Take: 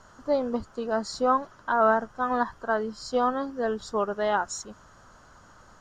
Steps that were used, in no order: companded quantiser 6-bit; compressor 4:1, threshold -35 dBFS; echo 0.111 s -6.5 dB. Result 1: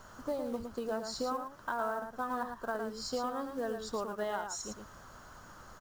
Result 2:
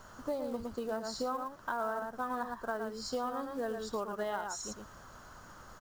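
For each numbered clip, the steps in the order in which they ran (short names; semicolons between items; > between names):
companded quantiser > compressor > echo; echo > companded quantiser > compressor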